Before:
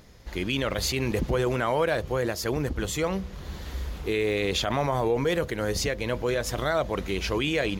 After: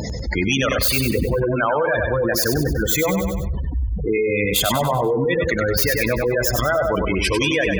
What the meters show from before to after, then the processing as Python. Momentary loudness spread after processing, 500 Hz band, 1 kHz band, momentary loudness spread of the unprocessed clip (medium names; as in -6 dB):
5 LU, +6.5 dB, +6.5 dB, 8 LU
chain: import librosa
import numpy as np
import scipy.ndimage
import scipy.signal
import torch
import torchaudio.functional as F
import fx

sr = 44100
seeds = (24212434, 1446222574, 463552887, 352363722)

p1 = fx.tracing_dist(x, sr, depth_ms=0.13)
p2 = fx.rider(p1, sr, range_db=3, speed_s=0.5)
p3 = p1 + (p2 * librosa.db_to_amplitude(0.0))
p4 = scipy.signal.sosfilt(scipy.signal.butter(4, 45.0, 'highpass', fs=sr, output='sos'), p3)
p5 = fx.high_shelf(p4, sr, hz=6300.0, db=11.0)
p6 = fx.spec_gate(p5, sr, threshold_db=-15, keep='strong')
p7 = fx.dereverb_blind(p6, sr, rt60_s=1.7)
p8 = fx.notch(p7, sr, hz=390.0, q=12.0)
p9 = fx.echo_feedback(p8, sr, ms=97, feedback_pct=43, wet_db=-7.0)
p10 = fx.dynamic_eq(p9, sr, hz=1900.0, q=1.8, threshold_db=-41.0, ratio=4.0, max_db=5)
p11 = fx.env_flatten(p10, sr, amount_pct=70)
y = p11 * librosa.db_to_amplitude(-2.0)